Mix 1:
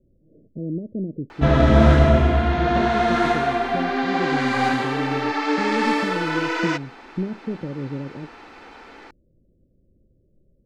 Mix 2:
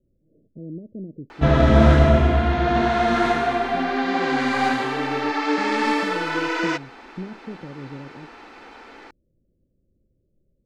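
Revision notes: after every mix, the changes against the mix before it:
speech -7.0 dB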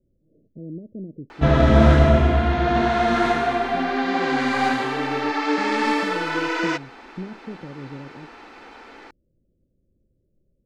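no change

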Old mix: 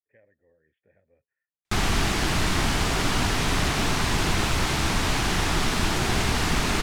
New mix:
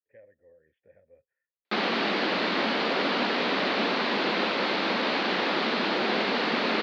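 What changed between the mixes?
background: add Chebyshev band-pass 210–4400 Hz, order 4; master: add peaking EQ 530 Hz +9.5 dB 0.37 oct

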